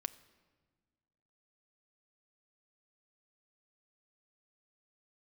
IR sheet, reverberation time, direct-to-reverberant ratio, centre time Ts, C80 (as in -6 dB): 1.5 s, 11.0 dB, 4 ms, 18.5 dB